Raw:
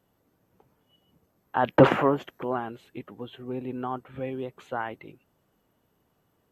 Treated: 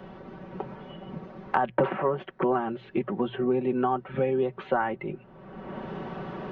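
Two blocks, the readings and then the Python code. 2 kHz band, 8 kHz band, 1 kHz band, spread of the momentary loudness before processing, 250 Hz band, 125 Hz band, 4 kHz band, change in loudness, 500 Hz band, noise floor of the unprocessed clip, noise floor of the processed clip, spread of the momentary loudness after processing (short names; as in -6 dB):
-1.0 dB, n/a, +1.0 dB, 21 LU, 0.0 dB, -2.5 dB, -4.5 dB, -2.0 dB, +0.5 dB, -71 dBFS, -52 dBFS, 16 LU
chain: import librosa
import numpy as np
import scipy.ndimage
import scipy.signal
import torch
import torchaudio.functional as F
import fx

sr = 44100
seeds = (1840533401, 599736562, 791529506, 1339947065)

y = fx.hum_notches(x, sr, base_hz=60, count=2)
y = y + 0.68 * np.pad(y, (int(5.3 * sr / 1000.0), 0))[:len(y)]
y = fx.rider(y, sr, range_db=4, speed_s=0.5)
y = scipy.ndimage.gaussian_filter1d(y, 2.7, mode='constant')
y = fx.band_squash(y, sr, depth_pct=100)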